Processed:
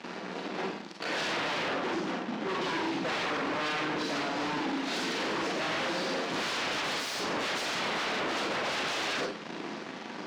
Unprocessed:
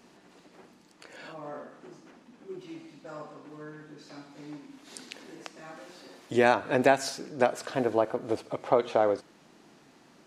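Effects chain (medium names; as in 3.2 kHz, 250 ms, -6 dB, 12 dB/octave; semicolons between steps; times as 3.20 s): in parallel at -6 dB: fuzz box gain 47 dB, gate -56 dBFS; on the sum: treble shelf 7.8 kHz -11 dB; Schroeder reverb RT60 0.3 s, combs from 33 ms, DRR 0.5 dB; wavefolder -22 dBFS; three-band isolator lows -23 dB, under 150 Hz, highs -20 dB, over 5.9 kHz; trim -4 dB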